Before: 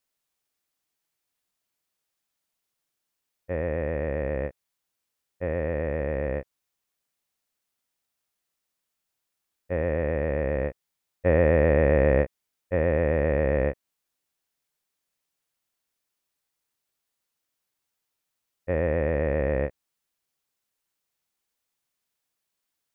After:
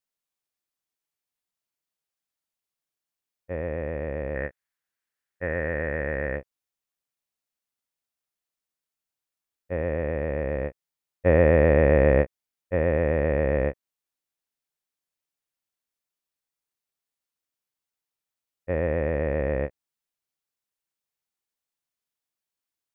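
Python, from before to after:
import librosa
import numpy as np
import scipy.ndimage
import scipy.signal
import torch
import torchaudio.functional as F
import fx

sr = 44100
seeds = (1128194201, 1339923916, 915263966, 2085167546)

y = fx.peak_eq(x, sr, hz=1700.0, db=12.0, octaves=0.71, at=(4.35, 6.37))
y = fx.upward_expand(y, sr, threshold_db=-38.0, expansion=1.5)
y = y * 10.0 ** (2.5 / 20.0)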